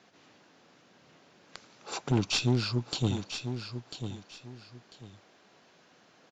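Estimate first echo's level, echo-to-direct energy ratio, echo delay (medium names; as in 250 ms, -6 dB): -9.0 dB, -8.5 dB, 995 ms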